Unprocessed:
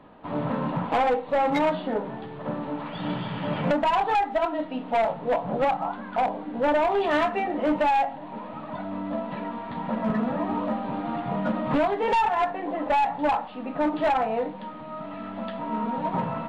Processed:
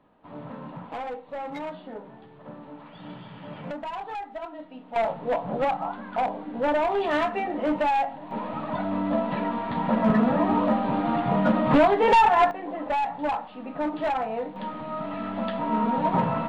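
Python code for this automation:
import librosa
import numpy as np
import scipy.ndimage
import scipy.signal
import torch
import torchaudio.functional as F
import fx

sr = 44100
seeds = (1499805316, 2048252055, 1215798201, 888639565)

y = fx.gain(x, sr, db=fx.steps((0.0, -11.5), (4.96, -1.5), (8.31, 5.0), (12.51, -3.5), (14.56, 4.0)))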